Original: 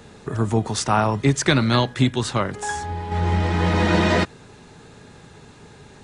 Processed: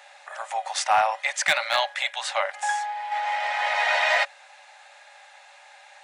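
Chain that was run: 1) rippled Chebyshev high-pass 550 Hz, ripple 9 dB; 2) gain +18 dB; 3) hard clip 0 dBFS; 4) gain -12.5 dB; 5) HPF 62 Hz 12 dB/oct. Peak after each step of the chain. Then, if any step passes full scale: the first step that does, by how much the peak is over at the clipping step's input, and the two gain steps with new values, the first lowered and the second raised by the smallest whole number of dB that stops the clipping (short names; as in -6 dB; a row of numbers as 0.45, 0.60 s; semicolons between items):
-9.5, +8.5, 0.0, -12.5, -11.5 dBFS; step 2, 8.5 dB; step 2 +9 dB, step 4 -3.5 dB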